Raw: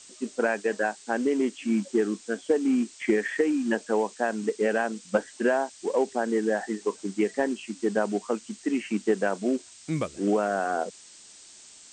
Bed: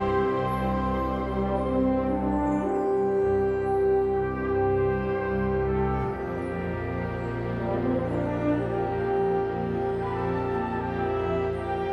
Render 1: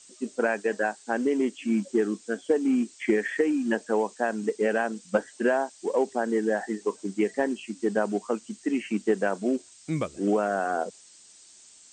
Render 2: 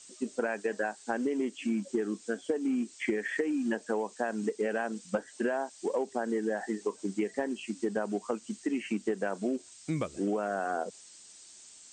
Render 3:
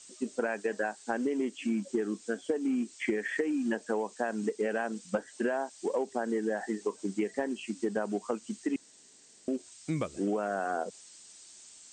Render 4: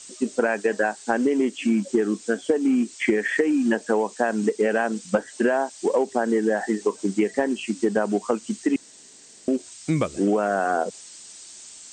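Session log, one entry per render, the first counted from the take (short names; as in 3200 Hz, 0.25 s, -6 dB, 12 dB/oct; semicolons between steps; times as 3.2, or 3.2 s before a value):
denoiser 6 dB, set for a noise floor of -50 dBFS
compressor 4:1, threshold -28 dBFS, peak gain reduction 9.5 dB
8.76–9.48 room tone
gain +9.5 dB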